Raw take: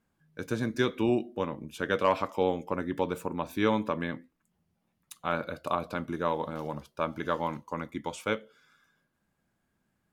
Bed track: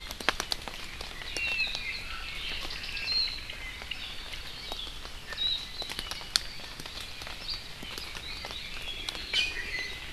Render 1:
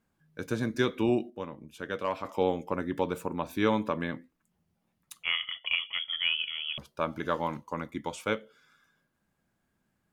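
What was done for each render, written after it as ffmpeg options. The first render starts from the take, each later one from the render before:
-filter_complex "[0:a]asettb=1/sr,asplit=3[s0][s1][s2];[s0]atrim=end=5.234[s3];[s1]atrim=start=5.23:end=6.78,asetpts=PTS-STARTPTS,afade=t=in:d=0.004:c=qsin,afade=t=out:st=1.546:d=0.004:c=qsin,lowpass=f=3000:t=q:w=0.5098,lowpass=f=3000:t=q:w=0.6013,lowpass=f=3000:t=q:w=0.9,lowpass=f=3000:t=q:w=2.563,afreqshift=-3500[s4];[s2]atrim=start=6.776[s5];[s3][s4]acrossfade=d=0.004:c1=hsin:c2=qsin[s6];[s6][s5]acrossfade=d=0.004:c1=qsin:c2=hsin,asplit=3[s7][s8][s9];[s7]atrim=end=1.302[s10];[s8]atrim=start=1.298:end=2.252,asetpts=PTS-STARTPTS,volume=0.473[s11];[s9]atrim=start=2.248[s12];[s10][s11]acrossfade=d=0.004:c1=hsin:c2=hsin[s13];[s13][s12]acrossfade=d=0.004:c1=hsin:c2=hsin"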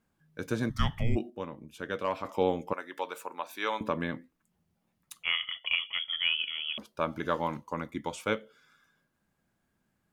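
-filter_complex "[0:a]asplit=3[s0][s1][s2];[s0]afade=t=out:st=0.69:d=0.02[s3];[s1]afreqshift=-350,afade=t=in:st=0.69:d=0.02,afade=t=out:st=1.15:d=0.02[s4];[s2]afade=t=in:st=1.15:d=0.02[s5];[s3][s4][s5]amix=inputs=3:normalize=0,asettb=1/sr,asplit=3[s6][s7][s8];[s6]atrim=end=2.734[s9];[s7]atrim=start=2.73:end=3.81,asetpts=PTS-STARTPTS,afade=t=in:d=0.004:c=qsin,afade=t=out:st=1.076:d=0.004:c=qsin,highpass=720[s10];[s8]atrim=start=3.806[s11];[s9][s10]acrossfade=d=0.004:c1=hsin:c2=qsin[s12];[s12][s11]acrossfade=d=0.004:c1=qsin:c2=hsin,asettb=1/sr,asplit=3[s13][s14][s15];[s13]atrim=end=6.394[s16];[s14]atrim=start=6.39:end=6.92,asetpts=PTS-STARTPTS,afade=t=in:d=0.004:c=qsin,afade=t=out:st=0.526:d=0.004:c=qsin,lowshelf=f=170:t=q:w=3:g=-11[s17];[s15]atrim=start=6.916[s18];[s16][s17]acrossfade=d=0.004:c1=hsin:c2=qsin[s19];[s19][s18]acrossfade=d=0.004:c1=qsin:c2=hsin"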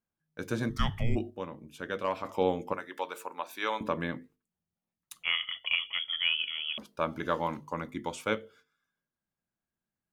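-af "agate=range=0.178:threshold=0.00126:ratio=16:detection=peak,bandreject=f=50:t=h:w=6,bandreject=f=100:t=h:w=6,bandreject=f=150:t=h:w=6,bandreject=f=200:t=h:w=6,bandreject=f=250:t=h:w=6,bandreject=f=300:t=h:w=6,bandreject=f=350:t=h:w=6,bandreject=f=400:t=h:w=6,bandreject=f=450:t=h:w=6"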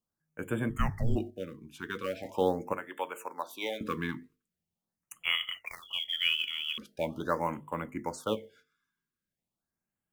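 -filter_complex "[0:a]acrossover=split=440[s0][s1];[s1]acrusher=bits=6:mode=log:mix=0:aa=0.000001[s2];[s0][s2]amix=inputs=2:normalize=0,afftfilt=real='re*(1-between(b*sr/1024,600*pow(5100/600,0.5+0.5*sin(2*PI*0.42*pts/sr))/1.41,600*pow(5100/600,0.5+0.5*sin(2*PI*0.42*pts/sr))*1.41))':imag='im*(1-between(b*sr/1024,600*pow(5100/600,0.5+0.5*sin(2*PI*0.42*pts/sr))/1.41,600*pow(5100/600,0.5+0.5*sin(2*PI*0.42*pts/sr))*1.41))':win_size=1024:overlap=0.75"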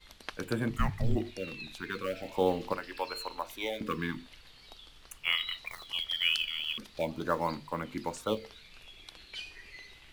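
-filter_complex "[1:a]volume=0.188[s0];[0:a][s0]amix=inputs=2:normalize=0"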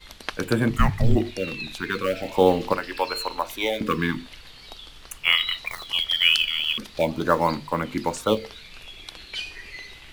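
-af "volume=3.16"

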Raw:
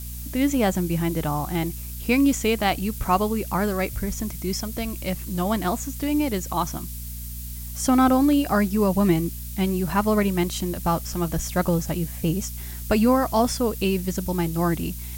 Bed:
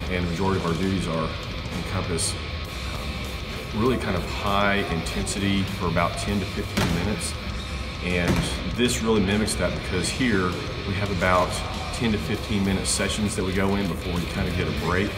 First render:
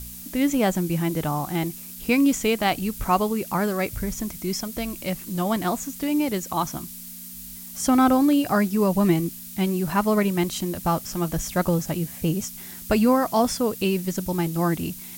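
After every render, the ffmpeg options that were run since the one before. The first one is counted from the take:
-af "bandreject=f=60:t=h:w=4,bandreject=f=120:t=h:w=4"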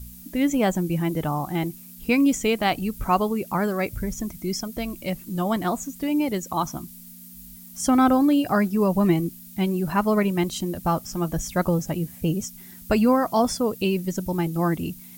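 -af "afftdn=nr=9:nf=-39"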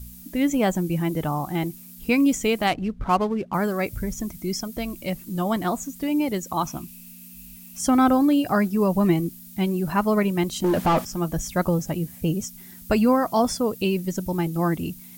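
-filter_complex "[0:a]asettb=1/sr,asplit=3[s0][s1][s2];[s0]atrim=end=2.674[s3];[s1]atrim=start=2.67:end=3.54,asetpts=PTS-STARTPTS,afade=t=in:d=0.004:c=qsin,afade=t=out:st=0.866:d=0.004:c=qsin,adynamicsmooth=sensitivity=7:basefreq=1100[s4];[s2]atrim=start=3.536[s5];[s3][s4]acrossfade=d=0.004:c1=hsin:c2=qsin[s6];[s6][s5]acrossfade=d=0.004:c1=qsin:c2=hsin,asettb=1/sr,asplit=3[s7][s8][s9];[s7]atrim=end=6.644[s10];[s8]atrim=start=6.64:end=7.79,asetpts=PTS-STARTPTS,afade=t=in:d=0.004:c=qsin,afade=t=out:st=1.146:d=0.004:c=qsin,equalizer=f=2600:w=6.1:g=15[s11];[s9]atrim=start=7.786[s12];[s10][s11]acrossfade=d=0.004:c1=hsin:c2=qsin[s13];[s13][s12]acrossfade=d=0.004:c1=qsin:c2=hsin,asettb=1/sr,asplit=3[s14][s15][s16];[s14]atrim=end=10.644[s17];[s15]atrim=start=10.64:end=11.05,asetpts=PTS-STARTPTS,afade=t=in:d=0.004:c=qsin,afade=t=out:st=0.406:d=0.004:c=qsin,asplit=2[s18][s19];[s19]highpass=f=720:p=1,volume=39.8,asoftclip=type=tanh:threshold=0.266[s20];[s18][s20]amix=inputs=2:normalize=0,lowpass=f=1300:p=1,volume=0.501[s21];[s16]atrim=start=11.046[s22];[s17][s21]acrossfade=d=0.004:c1=hsin:c2=qsin[s23];[s23][s22]acrossfade=d=0.004:c1=qsin:c2=hsin"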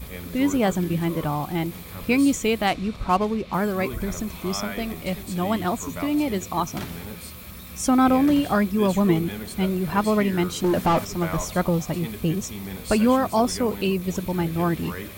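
-filter_complex "[1:a]volume=0.266[s0];[0:a][s0]amix=inputs=2:normalize=0"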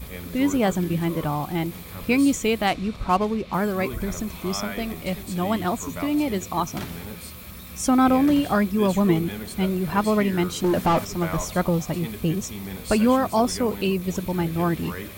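-af anull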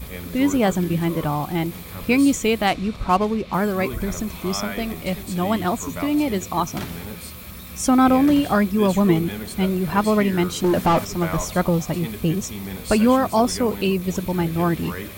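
-af "volume=1.33"

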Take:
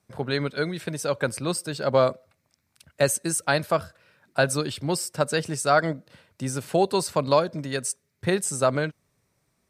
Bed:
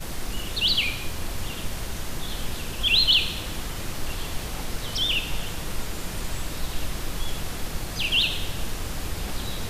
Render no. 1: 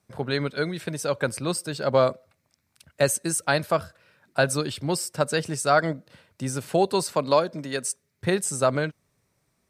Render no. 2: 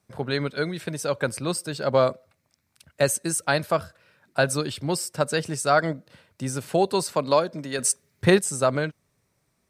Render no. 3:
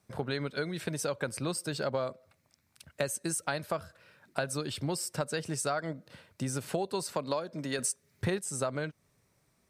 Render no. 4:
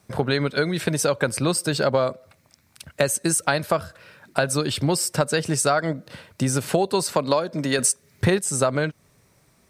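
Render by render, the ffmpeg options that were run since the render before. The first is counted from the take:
-filter_complex "[0:a]asettb=1/sr,asplit=3[s0][s1][s2];[s0]atrim=end=7.054[s3];[s1]atrim=start=7.05:end=7.9,asetpts=PTS-STARTPTS,afade=t=in:d=0.004:c=qsin,afade=t=out:st=0.846:d=0.004:c=qsin,highpass=170[s4];[s2]atrim=start=7.896[s5];[s3][s4]acrossfade=d=0.004:c1=hsin:c2=qsin[s6];[s6][s5]acrossfade=d=0.004:c1=qsin:c2=hsin"
-filter_complex "[0:a]asettb=1/sr,asplit=3[s0][s1][s2];[s0]atrim=end=7.794[s3];[s1]atrim=start=7.79:end=8.39,asetpts=PTS-STARTPTS,afade=t=in:d=0.004:c=qsin,afade=t=out:st=0.596:d=0.004:c=qsin,acontrast=71[s4];[s2]atrim=start=8.386[s5];[s3][s4]acrossfade=d=0.004:c1=hsin:c2=qsin[s6];[s6][s5]acrossfade=d=0.004:c1=qsin:c2=hsin"
-af "acompressor=threshold=0.0316:ratio=5"
-af "volume=3.76,alimiter=limit=0.794:level=0:latency=1"

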